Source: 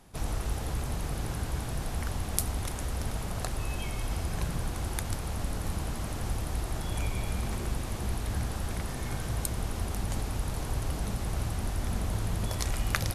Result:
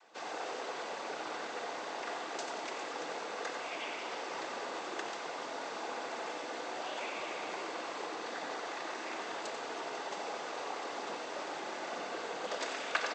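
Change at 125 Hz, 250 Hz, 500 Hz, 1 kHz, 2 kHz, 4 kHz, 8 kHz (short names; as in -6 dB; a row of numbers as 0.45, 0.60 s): -35.0, -10.0, +1.5, +2.5, +1.5, -1.0, -10.0 dB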